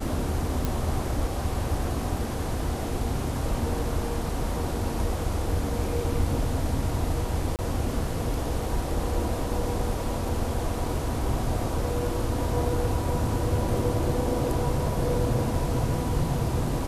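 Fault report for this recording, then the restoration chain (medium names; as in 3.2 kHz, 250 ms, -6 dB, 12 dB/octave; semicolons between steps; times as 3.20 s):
0.65 s: pop
7.56–7.59 s: dropout 28 ms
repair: de-click; interpolate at 7.56 s, 28 ms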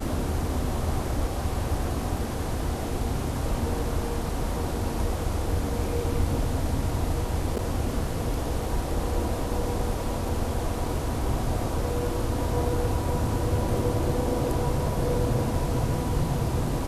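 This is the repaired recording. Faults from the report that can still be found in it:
nothing left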